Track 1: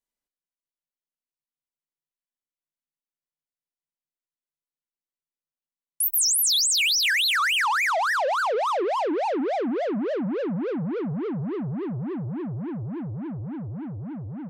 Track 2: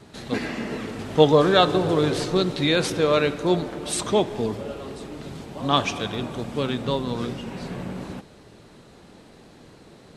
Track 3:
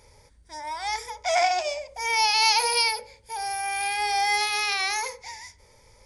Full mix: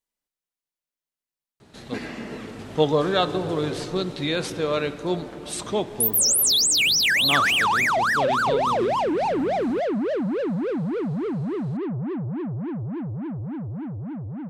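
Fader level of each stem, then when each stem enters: +2.0 dB, -4.5 dB, mute; 0.00 s, 1.60 s, mute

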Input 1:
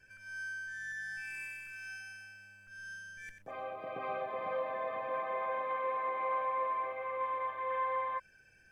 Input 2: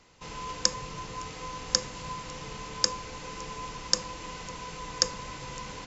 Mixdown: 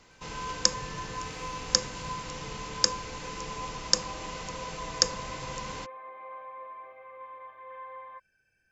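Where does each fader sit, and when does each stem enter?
-9.5 dB, +1.5 dB; 0.00 s, 0.00 s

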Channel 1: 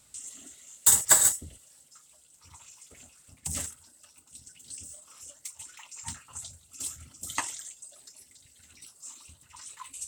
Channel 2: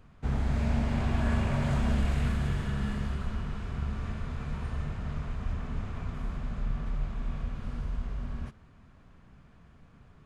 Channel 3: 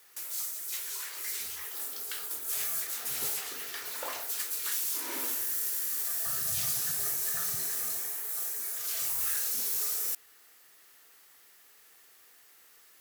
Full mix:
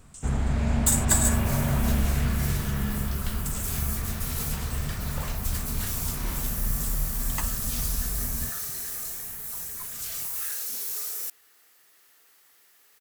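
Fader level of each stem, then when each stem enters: -4.0 dB, +3.0 dB, -1.0 dB; 0.00 s, 0.00 s, 1.15 s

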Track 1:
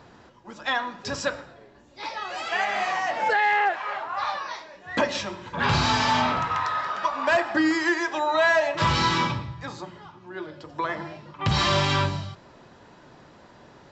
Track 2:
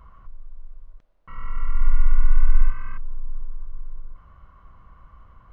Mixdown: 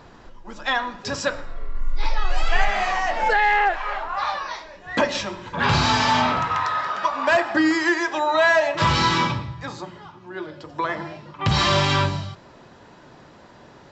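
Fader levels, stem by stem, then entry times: +3.0 dB, -7.0 dB; 0.00 s, 0.00 s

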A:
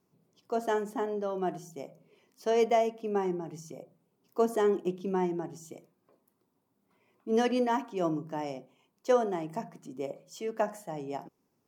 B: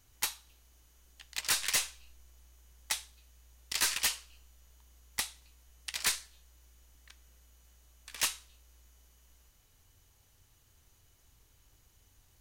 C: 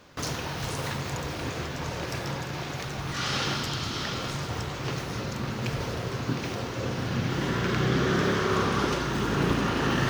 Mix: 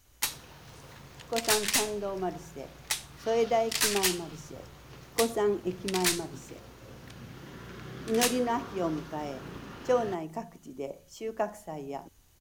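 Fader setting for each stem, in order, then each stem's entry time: -1.0 dB, +2.5 dB, -18.0 dB; 0.80 s, 0.00 s, 0.05 s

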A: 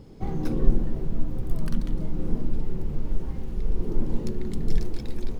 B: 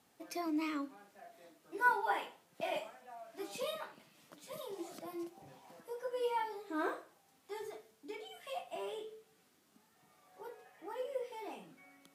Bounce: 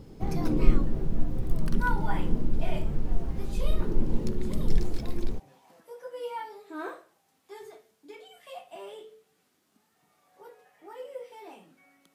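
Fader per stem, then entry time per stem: -0.5 dB, -0.5 dB; 0.00 s, 0.00 s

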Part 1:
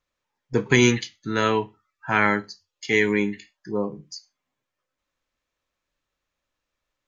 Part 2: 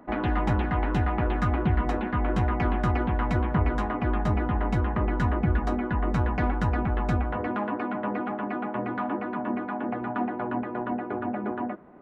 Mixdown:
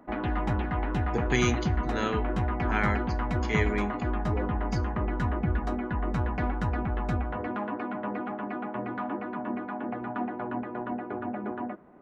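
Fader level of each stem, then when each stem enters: -9.0 dB, -3.5 dB; 0.60 s, 0.00 s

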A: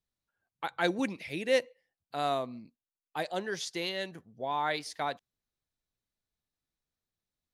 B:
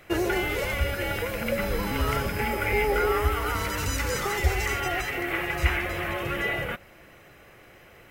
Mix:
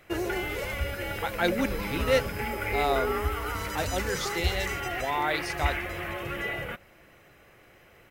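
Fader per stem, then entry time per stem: +2.5 dB, -4.5 dB; 0.60 s, 0.00 s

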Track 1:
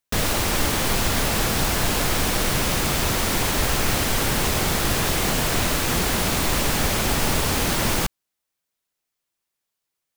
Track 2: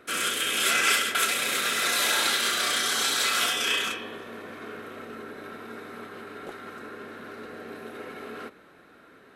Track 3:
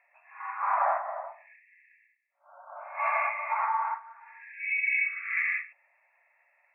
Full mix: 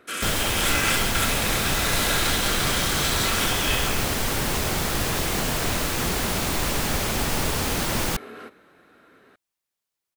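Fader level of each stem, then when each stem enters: -3.0 dB, -1.5 dB, mute; 0.10 s, 0.00 s, mute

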